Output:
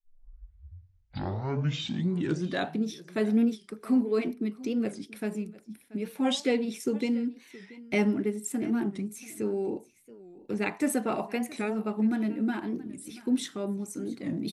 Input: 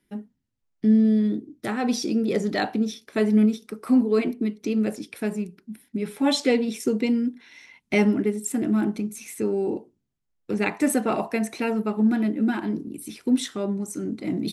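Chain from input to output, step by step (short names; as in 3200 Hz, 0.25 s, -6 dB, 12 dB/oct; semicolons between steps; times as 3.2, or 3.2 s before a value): tape start at the beginning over 2.81 s; echo 0.683 s -19.5 dB; record warp 45 rpm, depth 160 cents; gain -5.5 dB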